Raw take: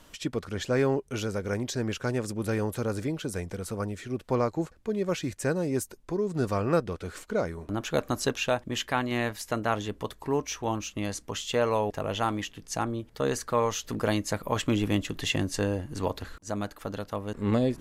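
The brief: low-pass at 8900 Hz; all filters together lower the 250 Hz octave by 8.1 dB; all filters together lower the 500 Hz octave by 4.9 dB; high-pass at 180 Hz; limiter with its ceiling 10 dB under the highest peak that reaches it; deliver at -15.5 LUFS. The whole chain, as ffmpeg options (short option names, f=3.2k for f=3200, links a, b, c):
-af "highpass=180,lowpass=8.9k,equalizer=f=250:t=o:g=-8,equalizer=f=500:t=o:g=-3.5,volume=21dB,alimiter=limit=-0.5dB:level=0:latency=1"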